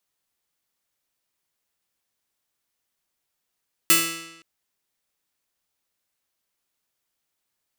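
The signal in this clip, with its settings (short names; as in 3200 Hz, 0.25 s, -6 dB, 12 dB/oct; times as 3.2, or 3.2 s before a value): plucked string E3, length 0.52 s, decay 0.97 s, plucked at 0.21, bright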